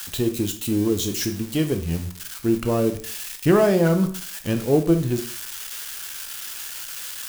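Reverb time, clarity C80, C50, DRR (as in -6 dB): 0.45 s, 15.5 dB, 11.0 dB, 6.0 dB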